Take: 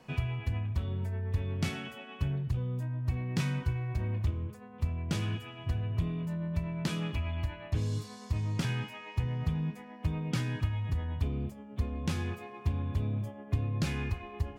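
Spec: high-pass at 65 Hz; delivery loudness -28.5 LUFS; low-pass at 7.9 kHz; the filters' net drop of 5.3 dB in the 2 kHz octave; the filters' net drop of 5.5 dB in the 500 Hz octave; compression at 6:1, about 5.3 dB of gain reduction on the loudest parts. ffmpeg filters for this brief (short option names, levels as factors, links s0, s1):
-af "highpass=65,lowpass=7900,equalizer=f=500:t=o:g=-7,equalizer=f=2000:t=o:g=-6.5,acompressor=threshold=0.0251:ratio=6,volume=3.16"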